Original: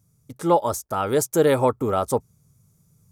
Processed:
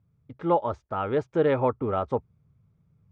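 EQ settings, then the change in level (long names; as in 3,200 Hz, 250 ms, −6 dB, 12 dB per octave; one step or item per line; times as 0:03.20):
low-pass filter 2,900 Hz 24 dB per octave
parametric band 71 Hz +4.5 dB 0.79 octaves
−4.5 dB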